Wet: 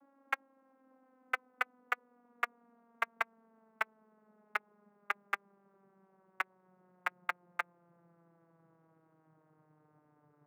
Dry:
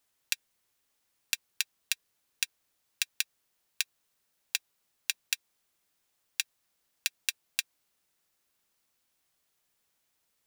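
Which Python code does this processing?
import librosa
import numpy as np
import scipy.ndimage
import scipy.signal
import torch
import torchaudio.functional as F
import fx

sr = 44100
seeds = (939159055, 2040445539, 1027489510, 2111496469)

p1 = fx.vocoder_glide(x, sr, note=61, semitones=-11)
p2 = scipy.signal.sosfilt(scipy.signal.butter(4, 1300.0, 'lowpass', fs=sr, output='sos'), p1)
p3 = np.where(np.abs(p2) >= 10.0 ** (-46.5 / 20.0), p2, 0.0)
p4 = p2 + F.gain(torch.from_numpy(p3), -8.0).numpy()
y = F.gain(torch.from_numpy(p4), 12.0).numpy()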